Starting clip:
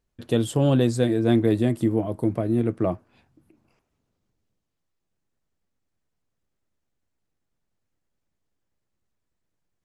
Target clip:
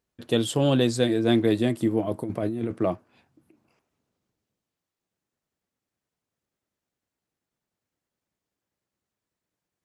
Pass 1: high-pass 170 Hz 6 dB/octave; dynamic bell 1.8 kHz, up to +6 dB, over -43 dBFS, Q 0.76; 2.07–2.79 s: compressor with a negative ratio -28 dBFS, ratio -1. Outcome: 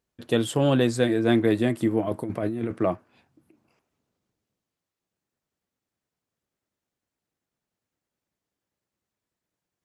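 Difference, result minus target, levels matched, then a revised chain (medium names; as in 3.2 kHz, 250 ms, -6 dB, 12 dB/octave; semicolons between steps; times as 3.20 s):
4 kHz band -3.0 dB
high-pass 170 Hz 6 dB/octave; dynamic bell 3.8 kHz, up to +6 dB, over -43 dBFS, Q 0.76; 2.07–2.79 s: compressor with a negative ratio -28 dBFS, ratio -1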